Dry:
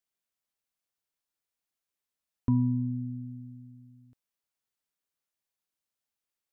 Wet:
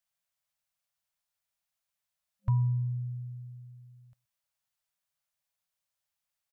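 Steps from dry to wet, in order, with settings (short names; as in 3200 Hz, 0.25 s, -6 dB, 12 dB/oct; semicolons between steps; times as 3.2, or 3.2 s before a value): FFT band-reject 200–530 Hz; outdoor echo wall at 21 m, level -27 dB; gain +2 dB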